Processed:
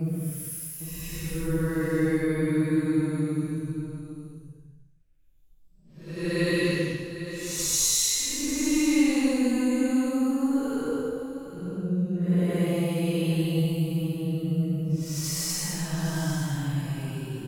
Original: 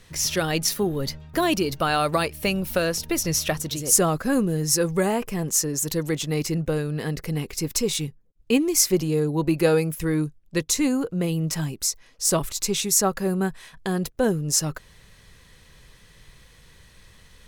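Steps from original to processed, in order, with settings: Paulstretch 9.4×, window 0.10 s, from 9.88; tapped delay 0.401/0.801 s -17/-11 dB; gain -2.5 dB

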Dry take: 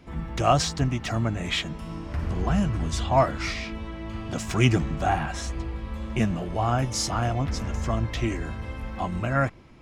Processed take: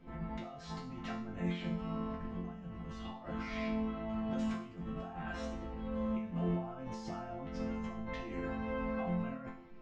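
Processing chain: high shelf 5500 Hz +3.5 dB; negative-ratio compressor -31 dBFS, ratio -1; tape spacing loss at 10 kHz 29 dB; resonator bank F3 major, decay 0.5 s; gain +11 dB

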